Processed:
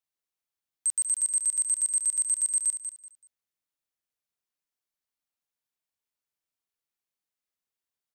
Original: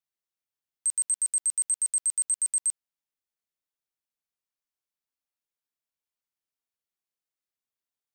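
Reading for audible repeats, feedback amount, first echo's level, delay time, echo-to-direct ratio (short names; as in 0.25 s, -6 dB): 3, 26%, -9.0 dB, 0.19 s, -8.5 dB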